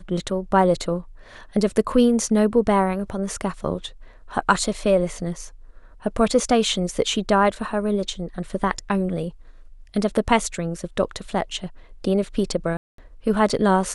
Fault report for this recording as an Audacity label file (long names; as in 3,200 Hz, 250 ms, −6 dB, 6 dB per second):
12.770000	12.980000	drop-out 213 ms